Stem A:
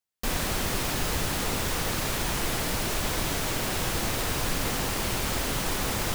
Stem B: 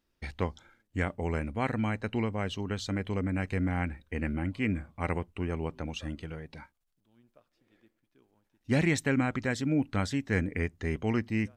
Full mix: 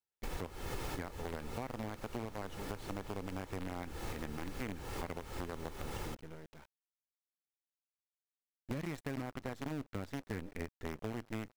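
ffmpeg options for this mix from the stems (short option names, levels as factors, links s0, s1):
-filter_complex "[0:a]aecho=1:1:2.3:0.43,volume=0.596[s0];[1:a]agate=range=0.0224:threshold=0.00178:ratio=3:detection=peak,acrusher=bits=5:dc=4:mix=0:aa=0.000001,volume=0.531,asplit=2[s1][s2];[s2]apad=whole_len=271109[s3];[s0][s3]sidechaincompress=threshold=0.00562:ratio=6:attack=6.7:release=278[s4];[s4][s1]amix=inputs=2:normalize=0,highshelf=f=2200:g=-9,acompressor=threshold=0.0158:ratio=6"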